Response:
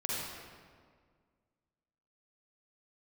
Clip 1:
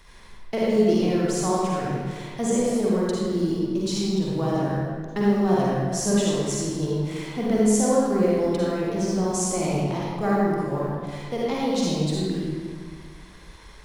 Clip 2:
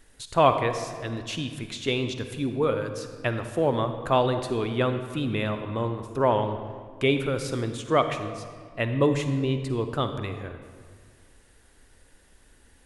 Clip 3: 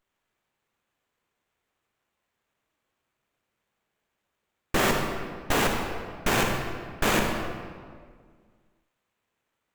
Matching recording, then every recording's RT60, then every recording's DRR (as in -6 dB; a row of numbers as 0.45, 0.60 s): 1; 1.8, 1.8, 1.8 s; -6.0, 8.0, 2.0 dB